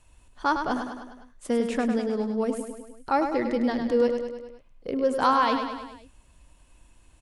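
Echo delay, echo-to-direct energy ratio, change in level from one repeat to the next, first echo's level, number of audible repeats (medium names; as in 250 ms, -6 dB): 102 ms, -5.0 dB, -4.5 dB, -7.0 dB, 5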